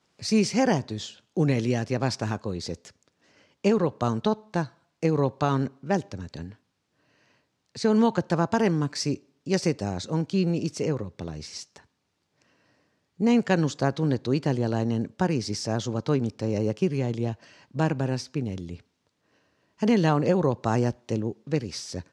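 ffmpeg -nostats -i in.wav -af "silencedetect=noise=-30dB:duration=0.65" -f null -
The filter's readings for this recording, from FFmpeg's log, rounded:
silence_start: 2.85
silence_end: 3.65 | silence_duration: 0.79
silence_start: 6.46
silence_end: 7.77 | silence_duration: 1.31
silence_start: 11.77
silence_end: 13.20 | silence_duration: 1.44
silence_start: 18.75
silence_end: 19.82 | silence_duration: 1.08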